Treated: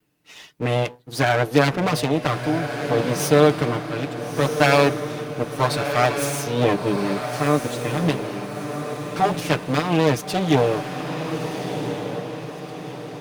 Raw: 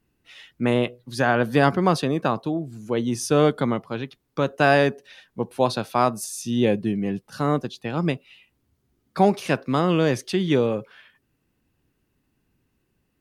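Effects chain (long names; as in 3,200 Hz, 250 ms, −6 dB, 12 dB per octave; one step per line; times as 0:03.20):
lower of the sound and its delayed copy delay 6.7 ms
high-pass filter 160 Hz 6 dB per octave
parametric band 1,300 Hz −2 dB 1.7 octaves
on a send: feedback delay with all-pass diffusion 1,374 ms, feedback 45%, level −7 dB
on the sum: level +5 dB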